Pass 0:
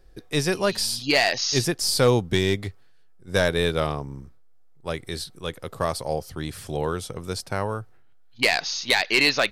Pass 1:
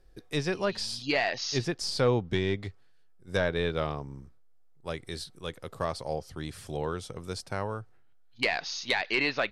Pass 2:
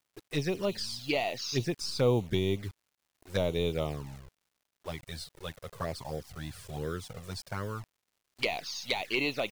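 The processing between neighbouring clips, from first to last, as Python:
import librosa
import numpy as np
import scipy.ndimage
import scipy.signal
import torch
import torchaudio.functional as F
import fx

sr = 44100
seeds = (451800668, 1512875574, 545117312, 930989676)

y1 = fx.env_lowpass_down(x, sr, base_hz=2800.0, full_db=-16.5)
y1 = F.gain(torch.from_numpy(y1), -6.0).numpy()
y2 = fx.quant_dither(y1, sr, seeds[0], bits=8, dither='none')
y2 = fx.env_flanger(y2, sr, rest_ms=3.1, full_db=-24.5)
y2 = fx.dmg_crackle(y2, sr, seeds[1], per_s=250.0, level_db=-62.0)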